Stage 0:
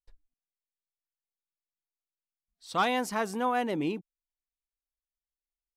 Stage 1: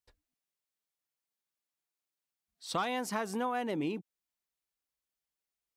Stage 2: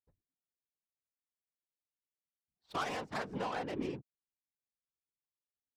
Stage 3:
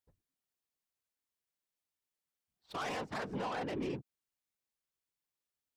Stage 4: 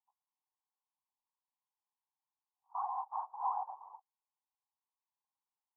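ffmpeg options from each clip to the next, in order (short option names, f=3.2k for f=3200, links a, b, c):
-af "highpass=80,acompressor=threshold=-35dB:ratio=5,volume=4dB"
-af "adynamicsmooth=sensitivity=5.5:basefreq=550,highshelf=f=2k:g=8.5,afftfilt=real='hypot(re,im)*cos(2*PI*random(0))':imag='hypot(re,im)*sin(2*PI*random(1))':win_size=512:overlap=0.75,volume=1dB"
-af "alimiter=level_in=9dB:limit=-24dB:level=0:latency=1:release=10,volume=-9dB,volume=3dB"
-af "asuperpass=centerf=920:order=8:qfactor=2.7,volume=7.5dB"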